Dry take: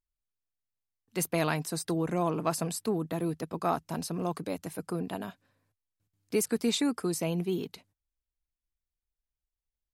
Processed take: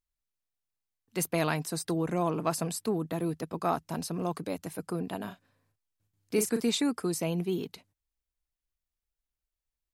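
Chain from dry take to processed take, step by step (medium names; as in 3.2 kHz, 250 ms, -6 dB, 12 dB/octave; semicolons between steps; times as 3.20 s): 5.20–6.64 s: doubling 38 ms -7.5 dB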